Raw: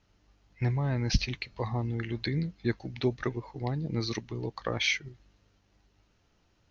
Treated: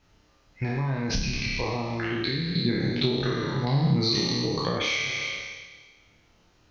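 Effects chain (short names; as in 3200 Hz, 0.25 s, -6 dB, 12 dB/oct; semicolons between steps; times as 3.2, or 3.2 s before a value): spectral trails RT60 1.49 s; notches 50/100/150/200 Hz; flutter echo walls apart 5 m, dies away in 0.39 s; compressor 6:1, threshold -28 dBFS, peak gain reduction 12.5 dB; 2.55–4.78 fifteen-band EQ 160 Hz +11 dB, 1600 Hz -4 dB, 4000 Hz +8 dB; gain +3.5 dB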